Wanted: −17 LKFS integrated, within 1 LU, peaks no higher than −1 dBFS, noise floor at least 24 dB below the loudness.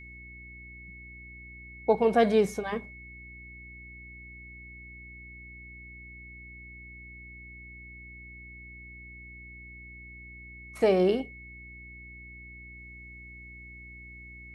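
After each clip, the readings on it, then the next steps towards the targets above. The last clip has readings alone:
mains hum 60 Hz; hum harmonics up to 360 Hz; level of the hum −48 dBFS; interfering tone 2,200 Hz; level of the tone −46 dBFS; integrated loudness −26.0 LKFS; sample peak −10.5 dBFS; target loudness −17.0 LKFS
→ hum removal 60 Hz, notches 6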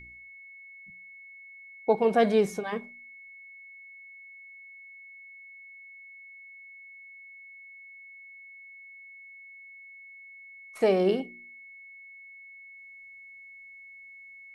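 mains hum none found; interfering tone 2,200 Hz; level of the tone −46 dBFS
→ notch filter 2,200 Hz, Q 30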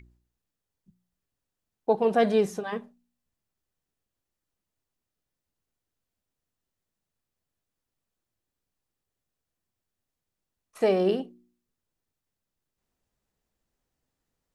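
interfering tone none found; integrated loudness −26.0 LKFS; sample peak −11.0 dBFS; target loudness −17.0 LKFS
→ level +9 dB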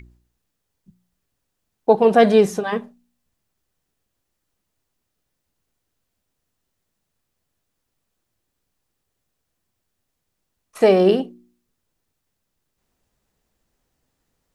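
integrated loudness −17.0 LKFS; sample peak −2.0 dBFS; background noise floor −77 dBFS

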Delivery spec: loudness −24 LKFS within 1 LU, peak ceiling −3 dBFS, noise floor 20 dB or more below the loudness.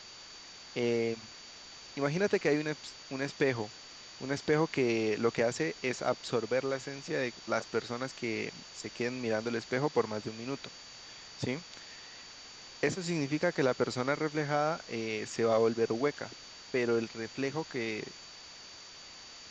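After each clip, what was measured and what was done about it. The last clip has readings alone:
interfering tone 4,600 Hz; level of the tone −51 dBFS; background noise floor −50 dBFS; target noise floor −53 dBFS; integrated loudness −33.0 LKFS; sample peak −14.5 dBFS; target loudness −24.0 LKFS
→ notch filter 4,600 Hz, Q 30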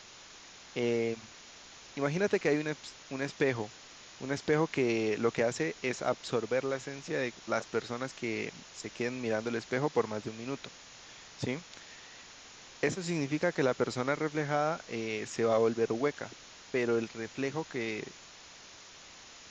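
interfering tone none found; background noise floor −52 dBFS; target noise floor −53 dBFS
→ broadband denoise 6 dB, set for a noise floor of −52 dBFS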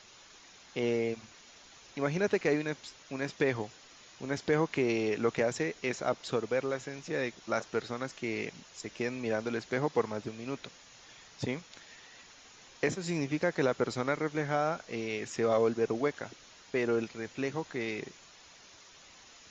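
background noise floor −56 dBFS; integrated loudness −33.0 LKFS; sample peak −14.0 dBFS; target loudness −24.0 LKFS
→ level +9 dB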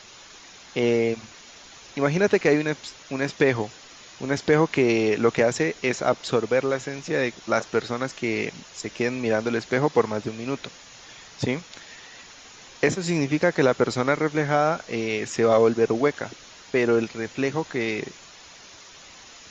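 integrated loudness −24.0 LKFS; sample peak −5.0 dBFS; background noise floor −47 dBFS

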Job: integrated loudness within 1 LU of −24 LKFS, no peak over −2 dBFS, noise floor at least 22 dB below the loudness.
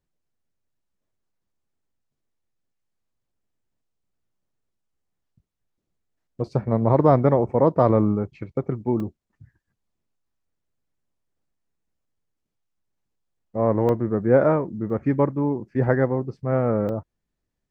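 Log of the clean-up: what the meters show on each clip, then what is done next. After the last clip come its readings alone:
number of dropouts 4; longest dropout 1.8 ms; integrated loudness −22.0 LKFS; sample peak −4.0 dBFS; target loudness −24.0 LKFS
→ repair the gap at 0:09.00/0:13.89/0:14.90/0:16.89, 1.8 ms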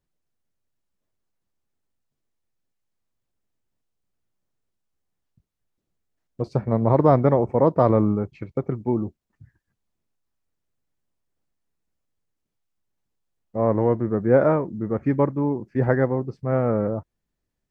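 number of dropouts 0; integrated loudness −22.0 LKFS; sample peak −4.0 dBFS; target loudness −24.0 LKFS
→ level −2 dB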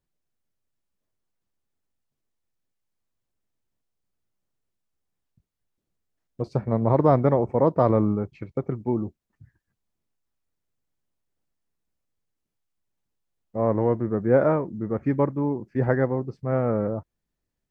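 integrated loudness −24.0 LKFS; sample peak −6.0 dBFS; background noise floor −83 dBFS

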